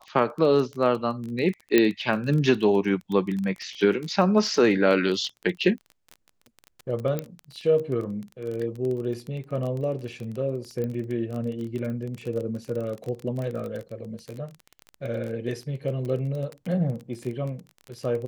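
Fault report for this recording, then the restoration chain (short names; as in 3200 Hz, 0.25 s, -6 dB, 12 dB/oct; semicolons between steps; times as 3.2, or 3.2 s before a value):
crackle 24/s -30 dBFS
1.78 pop -6 dBFS
7.19 pop -15 dBFS
10.84 pop -20 dBFS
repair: de-click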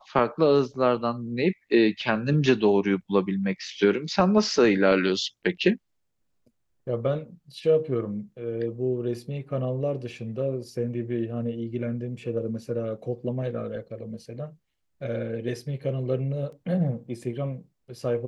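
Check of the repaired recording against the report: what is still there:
none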